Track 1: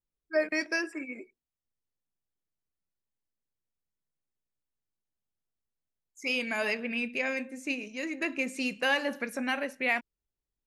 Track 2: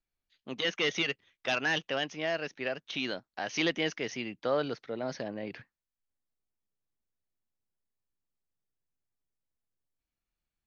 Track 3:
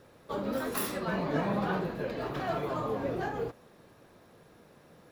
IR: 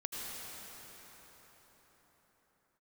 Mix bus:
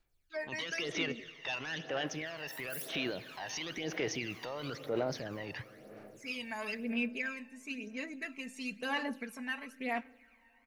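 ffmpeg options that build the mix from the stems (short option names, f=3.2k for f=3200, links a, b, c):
-filter_complex "[0:a]aecho=1:1:4.5:0.73,volume=-12dB,asplit=2[a][b];[b]volume=-22.5dB[c];[1:a]equalizer=f=220:t=o:w=0.53:g=-8,acompressor=threshold=-32dB:ratio=2.5,tremolo=f=0.7:d=0.4,volume=-1.5dB,asplit=2[d][e];[e]volume=-12.5dB[f];[2:a]aderivative,adelay=1950,volume=-13dB,asplit=2[g][h];[h]volume=-21.5dB[i];[d][g]amix=inputs=2:normalize=0,acontrast=76,alimiter=level_in=8.5dB:limit=-24dB:level=0:latency=1:release=22,volume=-8.5dB,volume=0dB[j];[3:a]atrim=start_sample=2205[k];[c][f][i]amix=inputs=3:normalize=0[l];[l][k]afir=irnorm=-1:irlink=0[m];[a][j][m]amix=inputs=3:normalize=0,aphaser=in_gain=1:out_gain=1:delay=1.1:decay=0.6:speed=1:type=sinusoidal"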